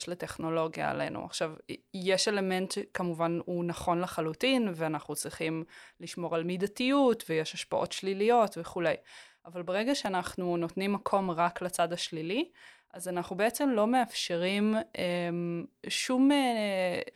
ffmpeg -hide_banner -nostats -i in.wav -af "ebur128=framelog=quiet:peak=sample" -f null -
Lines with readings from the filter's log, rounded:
Integrated loudness:
  I:         -30.7 LUFS
  Threshold: -41.0 LUFS
Loudness range:
  LRA:         2.7 LU
  Threshold: -51.1 LUFS
  LRA low:   -32.3 LUFS
  LRA high:  -29.6 LUFS
Sample peak:
  Peak:      -14.9 dBFS